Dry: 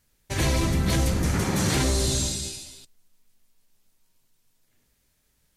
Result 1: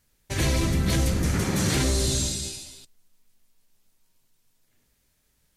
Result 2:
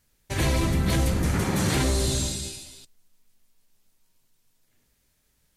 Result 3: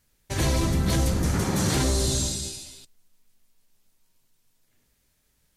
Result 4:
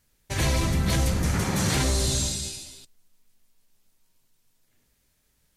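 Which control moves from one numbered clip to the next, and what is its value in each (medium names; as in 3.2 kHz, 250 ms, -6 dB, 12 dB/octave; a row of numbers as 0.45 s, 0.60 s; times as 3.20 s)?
dynamic bell, frequency: 880 Hz, 5.8 kHz, 2.3 kHz, 330 Hz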